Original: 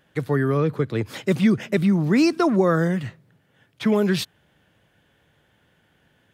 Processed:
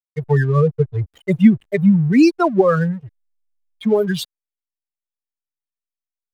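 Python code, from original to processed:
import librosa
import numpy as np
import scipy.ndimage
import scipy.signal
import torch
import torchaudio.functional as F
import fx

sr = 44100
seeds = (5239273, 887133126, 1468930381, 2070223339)

p1 = fx.bin_expand(x, sr, power=3.0)
p2 = fx.high_shelf(p1, sr, hz=2200.0, db=-8.0)
p3 = fx.rider(p2, sr, range_db=4, speed_s=2.0)
p4 = p2 + F.gain(torch.from_numpy(p3), 0.0).numpy()
p5 = fx.high_shelf(p4, sr, hz=8800.0, db=5.5)
p6 = fx.backlash(p5, sr, play_db=-41.0)
y = F.gain(torch.from_numpy(p6), 4.5).numpy()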